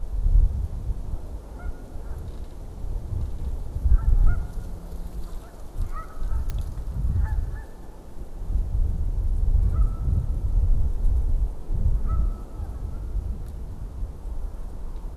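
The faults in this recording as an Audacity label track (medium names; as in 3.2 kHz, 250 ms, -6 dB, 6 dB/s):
6.500000	6.500000	pop -17 dBFS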